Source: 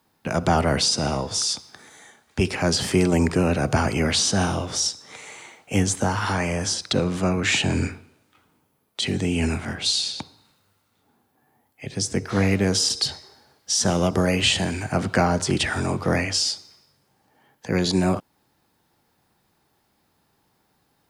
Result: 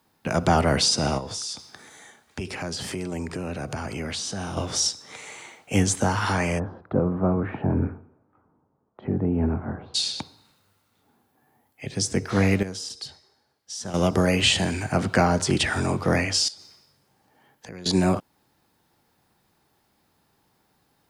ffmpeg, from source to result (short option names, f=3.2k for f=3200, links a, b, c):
-filter_complex "[0:a]asettb=1/sr,asplit=3[a][b][c];[a]atrim=end=1.184[d];[b]atrim=start=1.18:end=4.57,asetpts=PTS-STARTPTS,afade=t=in:d=0.004:c=qsin,afade=t=out:st=3.386:d=0.004:c=qsin,acompressor=threshold=-31dB:ratio=3:attack=3.2:release=140:knee=1:detection=peak[e];[c]atrim=start=4.566[f];[d][e]acrossfade=d=0.004:c1=hsin:c2=qsin[g];[g][f]acrossfade=d=0.004:c1=qsin:c2=hsin,asplit=3[h][i][j];[h]afade=t=out:st=6.58:d=0.02[k];[i]lowpass=f=1.2k:w=0.5412,lowpass=f=1.2k:w=1.3066,afade=t=in:st=6.58:d=0.02,afade=t=out:st=9.94:d=0.02[l];[j]afade=t=in:st=9.94:d=0.02[m];[k][l][m]amix=inputs=3:normalize=0,asettb=1/sr,asplit=3[n][o][p];[n]atrim=end=16.484[q];[o]atrim=start=16.48:end=17.86,asetpts=PTS-STARTPTS,afade=t=in:d=0.004:c=qsin,afade=t=out:st=1.376:d=0.004:c=qsin,acompressor=threshold=-39dB:ratio=4:attack=3.2:release=140:knee=1:detection=peak[r];[p]atrim=start=17.856[s];[q][r]acrossfade=d=0.004:c1=hsin:c2=qsin[t];[t][s]acrossfade=d=0.004:c1=qsin:c2=hsin,asplit=3[u][v][w];[u]atrim=end=12.63,asetpts=PTS-STARTPTS,afade=t=out:st=12.48:d=0.15:c=log:silence=0.223872[x];[v]atrim=start=12.63:end=13.94,asetpts=PTS-STARTPTS,volume=-13dB[y];[w]atrim=start=13.94,asetpts=PTS-STARTPTS,afade=t=in:d=0.15:c=log:silence=0.223872[z];[x][y][z]concat=n=3:v=0:a=1"